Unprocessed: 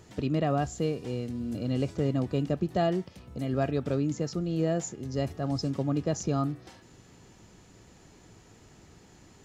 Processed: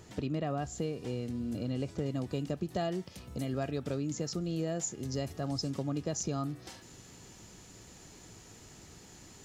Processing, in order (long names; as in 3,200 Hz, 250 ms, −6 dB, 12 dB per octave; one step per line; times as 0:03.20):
high-shelf EQ 3,900 Hz +2 dB, from 0:02.06 +10 dB
downward compressor 2.5 to 1, threshold −33 dBFS, peak gain reduction 8 dB